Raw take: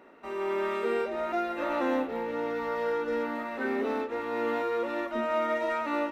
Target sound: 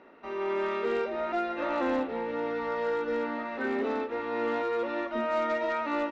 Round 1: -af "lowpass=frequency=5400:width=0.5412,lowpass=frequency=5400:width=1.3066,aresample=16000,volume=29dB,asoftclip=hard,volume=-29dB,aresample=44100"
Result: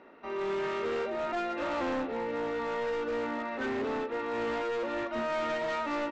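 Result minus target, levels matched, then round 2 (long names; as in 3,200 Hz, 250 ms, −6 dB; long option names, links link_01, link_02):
gain into a clipping stage and back: distortion +15 dB
-af "lowpass=frequency=5400:width=0.5412,lowpass=frequency=5400:width=1.3066,aresample=16000,volume=22.5dB,asoftclip=hard,volume=-22.5dB,aresample=44100"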